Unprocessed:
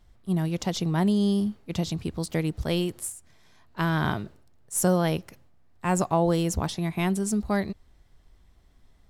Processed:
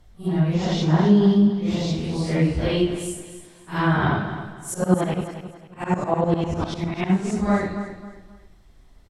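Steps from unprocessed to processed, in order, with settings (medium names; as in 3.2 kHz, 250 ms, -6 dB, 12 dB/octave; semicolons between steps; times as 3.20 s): phase randomisation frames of 200 ms; low-pass that closes with the level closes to 2.8 kHz, closed at -22 dBFS; 4.74–7.10 s: tremolo saw up 10 Hz, depth 95%; feedback delay 267 ms, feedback 31%, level -11 dB; reverberation RT60 0.65 s, pre-delay 88 ms, DRR 13.5 dB; trim +5.5 dB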